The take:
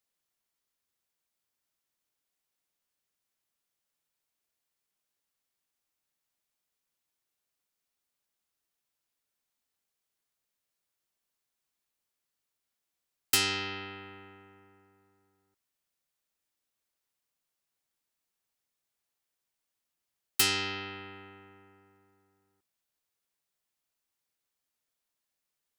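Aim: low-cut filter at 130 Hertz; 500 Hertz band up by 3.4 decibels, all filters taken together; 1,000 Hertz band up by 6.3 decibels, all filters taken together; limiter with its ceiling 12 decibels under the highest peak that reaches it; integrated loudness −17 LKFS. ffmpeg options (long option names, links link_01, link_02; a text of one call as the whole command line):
ffmpeg -i in.wav -af "highpass=130,equalizer=frequency=500:width_type=o:gain=3.5,equalizer=frequency=1000:width_type=o:gain=8,volume=19dB,alimiter=limit=-4.5dB:level=0:latency=1" out.wav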